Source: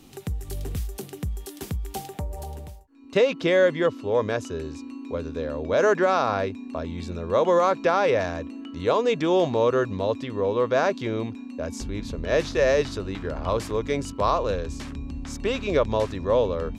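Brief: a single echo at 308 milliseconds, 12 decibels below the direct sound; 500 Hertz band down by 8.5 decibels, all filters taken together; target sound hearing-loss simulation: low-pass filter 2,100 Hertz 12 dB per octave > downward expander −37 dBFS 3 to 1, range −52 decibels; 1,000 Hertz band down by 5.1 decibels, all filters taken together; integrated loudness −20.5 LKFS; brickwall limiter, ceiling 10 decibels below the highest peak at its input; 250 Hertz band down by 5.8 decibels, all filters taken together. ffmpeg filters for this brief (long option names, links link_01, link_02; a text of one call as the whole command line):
ffmpeg -i in.wav -af "equalizer=frequency=250:width_type=o:gain=-4.5,equalizer=frequency=500:width_type=o:gain=-8,equalizer=frequency=1000:width_type=o:gain=-3.5,alimiter=limit=-23dB:level=0:latency=1,lowpass=2100,aecho=1:1:308:0.251,agate=range=-52dB:threshold=-37dB:ratio=3,volume=14.5dB" out.wav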